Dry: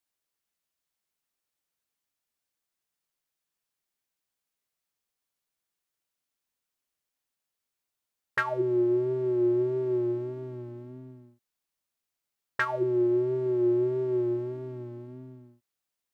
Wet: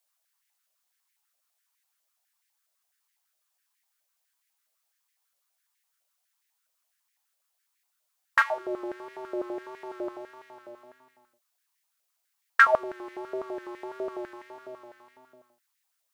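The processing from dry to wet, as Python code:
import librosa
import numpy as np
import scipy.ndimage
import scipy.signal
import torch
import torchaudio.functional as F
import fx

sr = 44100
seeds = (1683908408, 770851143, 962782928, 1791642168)

y = fx.high_shelf(x, sr, hz=3200.0, db=9.0)
y = fx.filter_held_highpass(y, sr, hz=12.0, low_hz=600.0, high_hz=1900.0)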